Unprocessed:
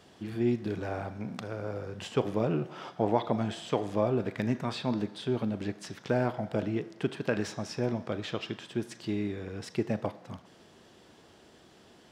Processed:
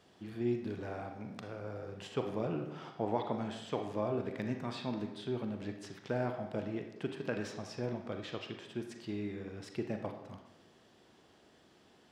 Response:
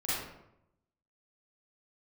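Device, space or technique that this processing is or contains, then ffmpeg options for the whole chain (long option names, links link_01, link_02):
filtered reverb send: -filter_complex "[0:a]asplit=2[link_01][link_02];[link_02]highpass=frequency=220:poles=1,lowpass=6300[link_03];[1:a]atrim=start_sample=2205[link_04];[link_03][link_04]afir=irnorm=-1:irlink=0,volume=-10.5dB[link_05];[link_01][link_05]amix=inputs=2:normalize=0,volume=-8.5dB"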